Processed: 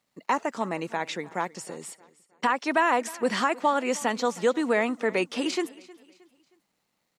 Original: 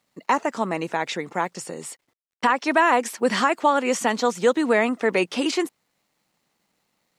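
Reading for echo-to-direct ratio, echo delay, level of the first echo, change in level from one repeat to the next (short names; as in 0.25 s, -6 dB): -20.5 dB, 0.313 s, -21.0 dB, -8.0 dB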